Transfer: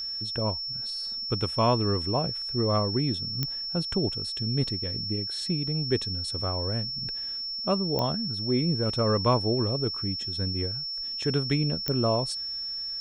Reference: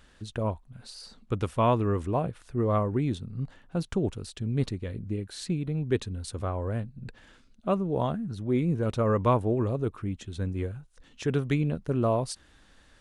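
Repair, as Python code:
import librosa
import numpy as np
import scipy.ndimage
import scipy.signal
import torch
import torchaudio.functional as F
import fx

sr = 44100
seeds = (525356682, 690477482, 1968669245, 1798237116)

y = fx.fix_declick_ar(x, sr, threshold=10.0)
y = fx.notch(y, sr, hz=5400.0, q=30.0)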